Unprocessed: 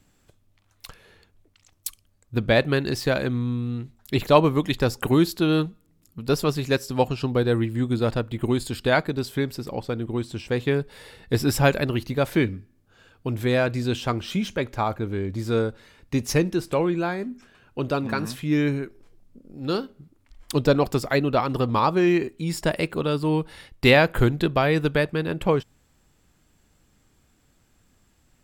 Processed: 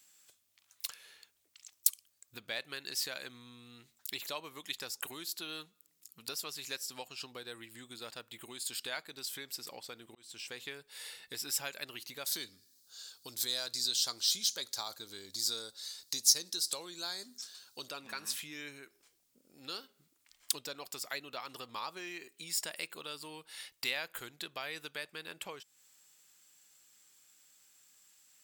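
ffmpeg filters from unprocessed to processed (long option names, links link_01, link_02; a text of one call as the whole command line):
ffmpeg -i in.wav -filter_complex "[0:a]asettb=1/sr,asplit=3[link_01][link_02][link_03];[link_01]atrim=end=12.264[link_04];[link_02]atrim=start=12.26:end=17.89,asetpts=PTS-STARTPTS,afade=type=in:duration=0.004:curve=qsin,afade=type=out:start_time=5.626:duration=0.004:curve=qsin,highshelf=frequency=3300:width_type=q:width=3:gain=9[link_05];[link_03]atrim=start=17.886[link_06];[link_04][link_05]acrossfade=duration=0.004:curve1=hsin:curve2=qsin[link_07];[link_07][link_06]acrossfade=duration=0.004:curve1=qsin:curve2=hsin,asplit=2[link_08][link_09];[link_08]atrim=end=10.15,asetpts=PTS-STARTPTS,afade=type=out:start_time=10.146:duration=0.004:curve=hsin[link_10];[link_09]atrim=start=10.15,asetpts=PTS-STARTPTS,afade=type=in:duration=0.66:curve=qsin[link_11];[link_10][link_11]concat=n=2:v=0:a=1,equalizer=frequency=12000:width_type=o:width=0.56:gain=-6.5,acompressor=threshold=-32dB:ratio=3,aderivative,volume=8dB" out.wav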